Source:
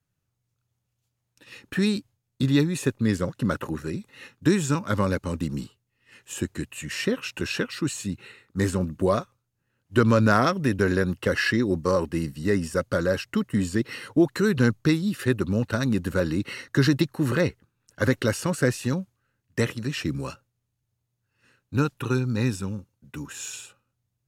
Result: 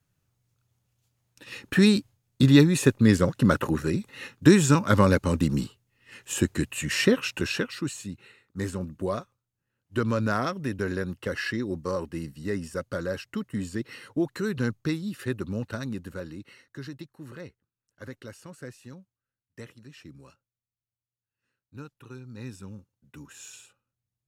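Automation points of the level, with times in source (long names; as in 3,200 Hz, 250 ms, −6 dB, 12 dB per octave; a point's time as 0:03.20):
0:07.11 +4.5 dB
0:08.11 −7 dB
0:15.67 −7 dB
0:16.76 −19 dB
0:22.17 −19 dB
0:22.77 −9.5 dB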